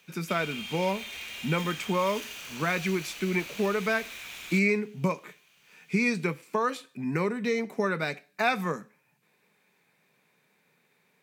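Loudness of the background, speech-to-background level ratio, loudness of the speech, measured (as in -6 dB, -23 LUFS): -38.5 LUFS, 9.0 dB, -29.5 LUFS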